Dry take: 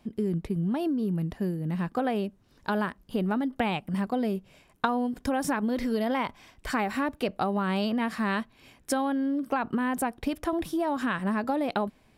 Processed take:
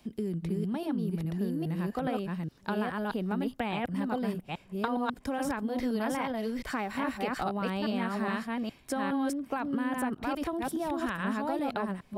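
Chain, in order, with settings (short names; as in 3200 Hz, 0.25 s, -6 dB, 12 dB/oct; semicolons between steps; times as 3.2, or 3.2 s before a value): reverse delay 0.414 s, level -1 dB; three-band squash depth 40%; gain -6 dB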